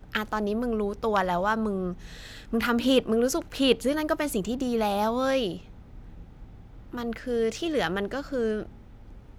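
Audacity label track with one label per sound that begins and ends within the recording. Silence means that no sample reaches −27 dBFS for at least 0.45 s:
2.530000	5.540000	sound
6.950000	8.630000	sound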